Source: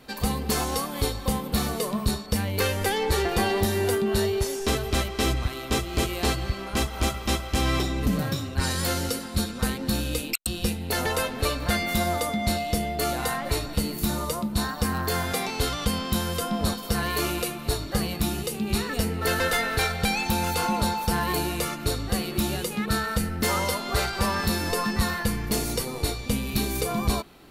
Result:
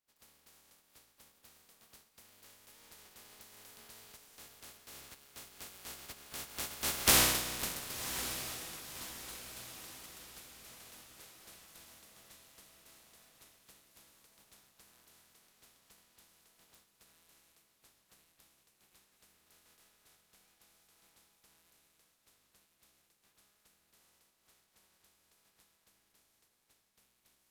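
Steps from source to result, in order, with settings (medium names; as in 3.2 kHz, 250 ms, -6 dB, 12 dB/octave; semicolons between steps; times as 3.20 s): spectral contrast reduction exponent 0.2; Doppler pass-by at 7.13 s, 21 m/s, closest 1.9 m; echo that smears into a reverb 1080 ms, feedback 46%, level -11.5 dB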